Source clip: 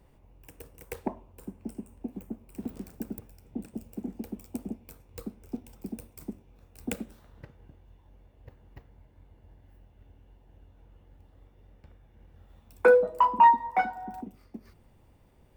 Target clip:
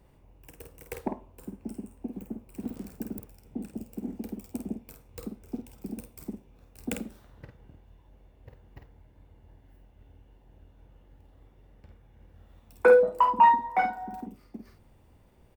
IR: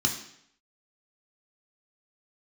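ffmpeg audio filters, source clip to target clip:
-filter_complex "[0:a]asplit=2[a][b];[b]adelay=50,volume=-6dB[c];[a][c]amix=inputs=2:normalize=0"

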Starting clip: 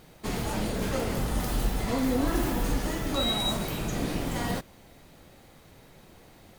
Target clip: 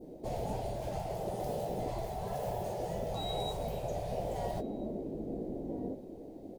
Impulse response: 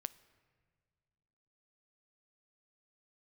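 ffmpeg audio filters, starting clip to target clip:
-filter_complex "[0:a]firequalizer=gain_entry='entry(140,0);entry(280,15);entry(640,8);entry(1200,-20);entry(5100,-13)':delay=0.05:min_phase=1,asplit=2[a][b];[b]adelay=1341,volume=-13dB,highshelf=f=4k:g=-30.2[c];[a][c]amix=inputs=2:normalize=0,adynamicequalizer=threshold=0.00794:dfrequency=2500:dqfactor=0.84:tfrequency=2500:tqfactor=0.84:attack=5:release=100:ratio=0.375:range=2:mode=boostabove:tftype=bell,asplit=2[d][e];[e]adelay=19,volume=-12dB[f];[d][f]amix=inputs=2:normalize=0,afftfilt=real='re*lt(hypot(re,im),0.224)':imag='im*lt(hypot(re,im),0.224)':win_size=1024:overlap=0.75,volume=-2.5dB"

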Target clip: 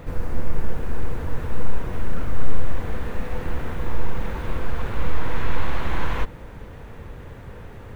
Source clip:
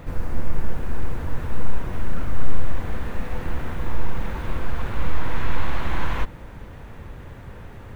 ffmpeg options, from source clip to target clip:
-af "equalizer=f=460:t=o:w=0.36:g=4.5"

